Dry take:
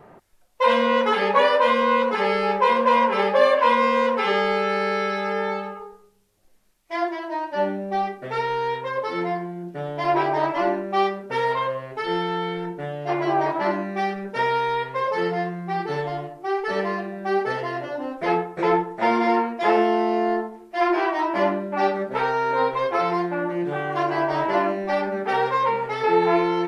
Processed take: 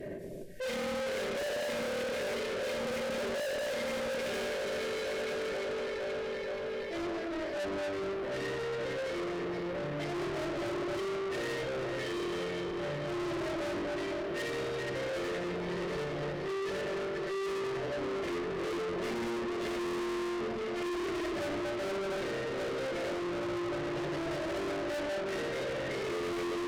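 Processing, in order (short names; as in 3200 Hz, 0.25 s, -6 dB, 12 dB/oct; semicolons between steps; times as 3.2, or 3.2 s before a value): elliptic band-stop 610–1700 Hz; bell 470 Hz +4.5 dB 2.1 oct; echo with dull and thin repeats by turns 0.238 s, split 910 Hz, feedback 85%, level -6.5 dB; shoebox room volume 2400 m³, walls furnished, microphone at 2.7 m; tube stage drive 31 dB, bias 0.4; limiter -40.5 dBFS, peak gain reduction 11.5 dB; gain +7.5 dB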